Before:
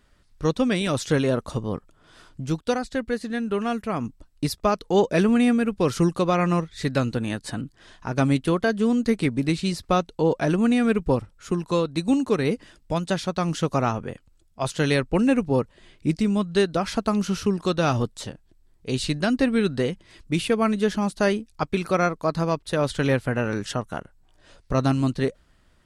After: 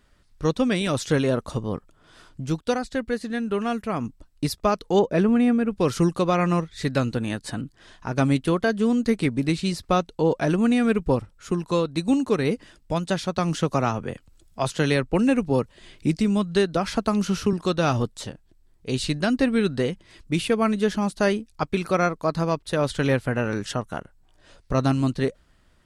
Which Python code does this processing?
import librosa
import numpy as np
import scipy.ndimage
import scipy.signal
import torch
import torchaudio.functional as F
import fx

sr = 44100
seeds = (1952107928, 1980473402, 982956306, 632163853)

y = fx.high_shelf(x, sr, hz=2500.0, db=-11.5, at=(4.99, 5.71))
y = fx.band_squash(y, sr, depth_pct=40, at=(13.38, 17.53))